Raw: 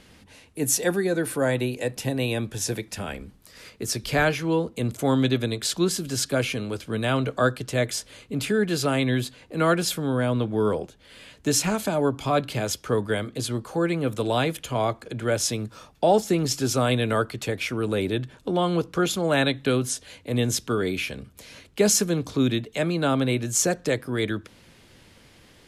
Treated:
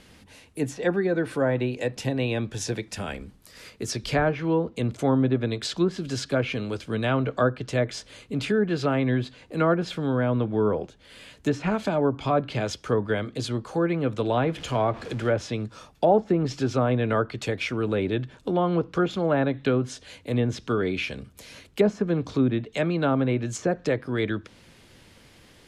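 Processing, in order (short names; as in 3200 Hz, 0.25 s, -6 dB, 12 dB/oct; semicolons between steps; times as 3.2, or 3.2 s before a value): 14.37–15.48 zero-crossing step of -36 dBFS; treble ducked by the level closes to 1200 Hz, closed at -17 dBFS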